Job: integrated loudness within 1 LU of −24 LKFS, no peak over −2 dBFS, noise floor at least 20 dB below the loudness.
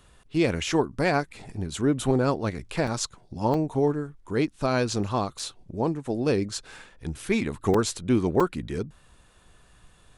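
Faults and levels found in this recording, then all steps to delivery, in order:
number of dropouts 5; longest dropout 4.0 ms; integrated loudness −27.0 LKFS; sample peak −9.5 dBFS; target loudness −24.0 LKFS
→ repair the gap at 0:02.87/0:03.54/0:05.39/0:07.74/0:08.40, 4 ms
level +3 dB

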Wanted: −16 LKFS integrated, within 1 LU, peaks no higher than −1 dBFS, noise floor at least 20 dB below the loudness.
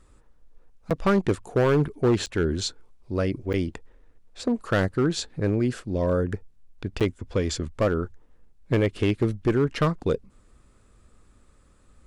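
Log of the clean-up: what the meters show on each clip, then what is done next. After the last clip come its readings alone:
share of clipped samples 1.6%; peaks flattened at −15.5 dBFS; number of dropouts 4; longest dropout 7.5 ms; integrated loudness −25.5 LKFS; sample peak −15.5 dBFS; target loudness −16.0 LKFS
→ clipped peaks rebuilt −15.5 dBFS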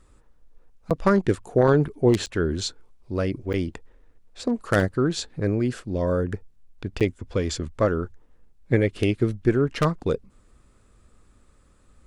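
share of clipped samples 0.0%; number of dropouts 4; longest dropout 7.5 ms
→ repair the gap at 0:00.90/0:02.26/0:03.53/0:07.00, 7.5 ms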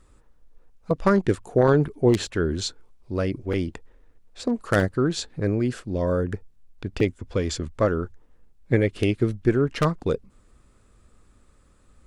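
number of dropouts 0; integrated loudness −24.5 LKFS; sample peak −6.5 dBFS; target loudness −16.0 LKFS
→ level +8.5 dB
brickwall limiter −1 dBFS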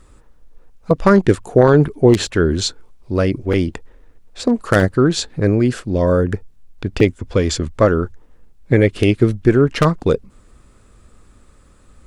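integrated loudness −16.5 LKFS; sample peak −1.0 dBFS; background noise floor −50 dBFS

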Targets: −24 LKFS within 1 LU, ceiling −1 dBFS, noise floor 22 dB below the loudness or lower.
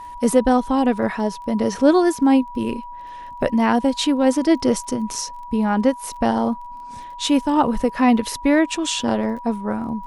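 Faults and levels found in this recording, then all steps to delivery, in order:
crackle rate 21 per second; interfering tone 970 Hz; level of the tone −33 dBFS; integrated loudness −20.0 LKFS; sample peak −2.5 dBFS; target loudness −24.0 LKFS
→ click removal
notch filter 970 Hz, Q 30
level −4 dB

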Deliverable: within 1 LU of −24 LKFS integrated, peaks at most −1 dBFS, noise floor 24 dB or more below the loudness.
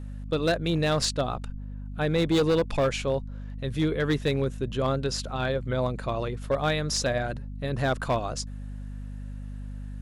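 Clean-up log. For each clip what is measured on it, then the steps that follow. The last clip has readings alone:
share of clipped samples 1.2%; peaks flattened at −18.0 dBFS; mains hum 50 Hz; hum harmonics up to 250 Hz; level of the hum −34 dBFS; integrated loudness −27.5 LKFS; sample peak −18.0 dBFS; target loudness −24.0 LKFS
→ clipped peaks rebuilt −18 dBFS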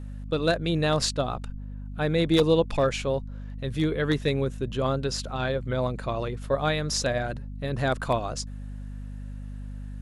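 share of clipped samples 0.0%; mains hum 50 Hz; hum harmonics up to 250 Hz; level of the hum −34 dBFS
→ mains-hum notches 50/100/150/200/250 Hz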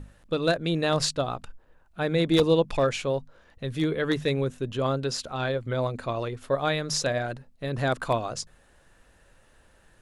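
mains hum none found; integrated loudness −27.0 LKFS; sample peak −8.5 dBFS; target loudness −24.0 LKFS
→ level +3 dB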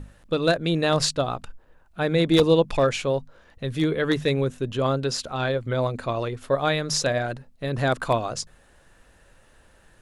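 integrated loudness −24.0 LKFS; sample peak −5.5 dBFS; background noise floor −57 dBFS

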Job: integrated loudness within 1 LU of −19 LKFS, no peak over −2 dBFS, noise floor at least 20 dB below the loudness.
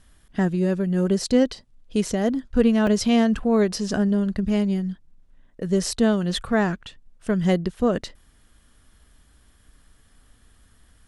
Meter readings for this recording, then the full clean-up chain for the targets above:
number of dropouts 1; longest dropout 2.3 ms; integrated loudness −22.5 LKFS; sample peak −6.5 dBFS; target loudness −19.0 LKFS
→ repair the gap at 0:02.87, 2.3 ms
level +3.5 dB

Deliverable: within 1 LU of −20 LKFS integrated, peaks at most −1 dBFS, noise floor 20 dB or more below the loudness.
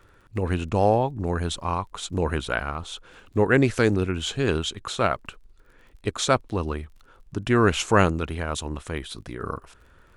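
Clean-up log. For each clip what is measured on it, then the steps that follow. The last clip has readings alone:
crackle rate 34 per second; integrated loudness −25.0 LKFS; sample peak −4.0 dBFS; target loudness −20.0 LKFS
→ click removal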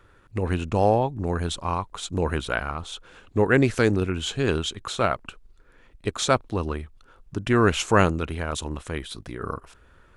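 crackle rate 0 per second; integrated loudness −25.0 LKFS; sample peak −4.0 dBFS; target loudness −20.0 LKFS
→ level +5 dB
brickwall limiter −1 dBFS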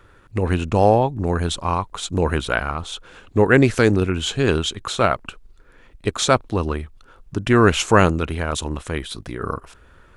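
integrated loudness −20.0 LKFS; sample peak −1.0 dBFS; background noise floor −51 dBFS

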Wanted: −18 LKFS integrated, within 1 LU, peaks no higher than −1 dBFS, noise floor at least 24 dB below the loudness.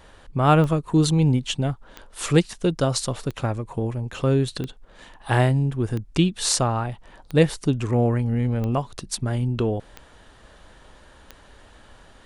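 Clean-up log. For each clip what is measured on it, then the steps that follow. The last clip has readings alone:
number of clicks 9; integrated loudness −23.0 LKFS; sample peak −4.0 dBFS; target loudness −18.0 LKFS
→ click removal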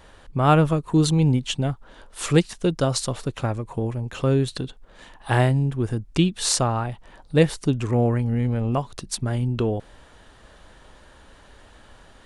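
number of clicks 0; integrated loudness −23.0 LKFS; sample peak −4.0 dBFS; target loudness −18.0 LKFS
→ level +5 dB
brickwall limiter −1 dBFS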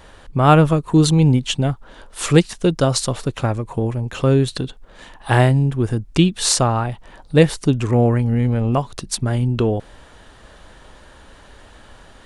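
integrated loudness −18.0 LKFS; sample peak −1.0 dBFS; background noise floor −45 dBFS

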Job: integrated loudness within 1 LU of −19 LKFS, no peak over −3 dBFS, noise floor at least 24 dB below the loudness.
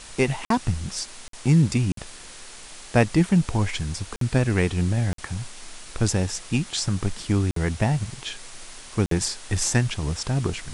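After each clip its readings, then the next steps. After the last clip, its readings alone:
number of dropouts 7; longest dropout 53 ms; background noise floor −43 dBFS; target noise floor −49 dBFS; integrated loudness −24.5 LKFS; sample peak −3.5 dBFS; target loudness −19.0 LKFS
→ repair the gap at 0:00.45/0:01.28/0:01.92/0:04.16/0:05.13/0:07.51/0:09.06, 53 ms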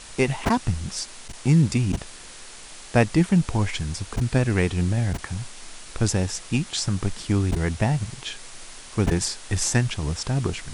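number of dropouts 0; background noise floor −42 dBFS; target noise floor −49 dBFS
→ noise reduction from a noise print 7 dB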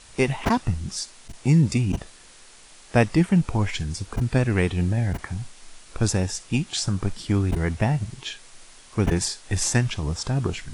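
background noise floor −49 dBFS; integrated loudness −24.5 LKFS; sample peak −3.5 dBFS; target loudness −19.0 LKFS
→ level +5.5 dB
brickwall limiter −3 dBFS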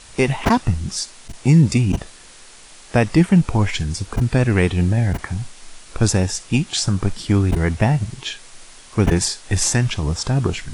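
integrated loudness −19.0 LKFS; sample peak −3.0 dBFS; background noise floor −44 dBFS

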